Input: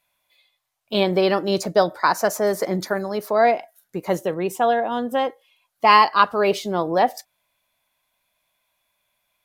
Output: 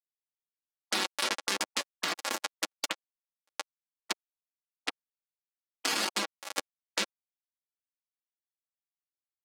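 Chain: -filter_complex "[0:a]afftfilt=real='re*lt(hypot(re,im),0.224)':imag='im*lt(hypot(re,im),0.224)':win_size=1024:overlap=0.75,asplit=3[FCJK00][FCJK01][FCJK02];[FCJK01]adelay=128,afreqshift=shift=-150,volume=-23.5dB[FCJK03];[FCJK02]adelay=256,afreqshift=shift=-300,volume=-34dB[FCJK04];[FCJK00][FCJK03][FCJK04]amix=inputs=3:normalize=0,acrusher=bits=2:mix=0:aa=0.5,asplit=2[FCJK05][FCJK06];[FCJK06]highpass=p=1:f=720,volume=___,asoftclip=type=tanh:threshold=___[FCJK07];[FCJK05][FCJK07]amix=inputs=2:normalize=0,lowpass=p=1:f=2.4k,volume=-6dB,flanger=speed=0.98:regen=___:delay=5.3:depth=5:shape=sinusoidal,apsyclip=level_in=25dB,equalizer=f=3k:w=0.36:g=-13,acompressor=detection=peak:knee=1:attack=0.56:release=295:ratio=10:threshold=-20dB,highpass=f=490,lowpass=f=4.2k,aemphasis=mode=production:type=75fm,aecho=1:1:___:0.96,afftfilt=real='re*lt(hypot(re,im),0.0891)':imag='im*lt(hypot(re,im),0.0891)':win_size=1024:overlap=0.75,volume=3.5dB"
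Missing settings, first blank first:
33dB, -10dB, 3, 3.6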